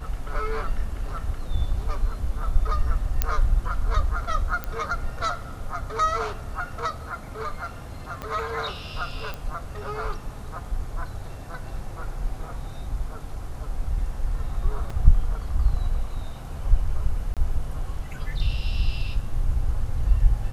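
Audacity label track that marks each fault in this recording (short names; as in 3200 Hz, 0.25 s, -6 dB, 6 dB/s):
3.220000	3.220000	pop -7 dBFS
4.640000	4.640000	pop -15 dBFS
8.220000	8.220000	pop -18 dBFS
9.340000	9.340000	pop -19 dBFS
14.900000	14.900000	gap 4.2 ms
17.340000	17.370000	gap 27 ms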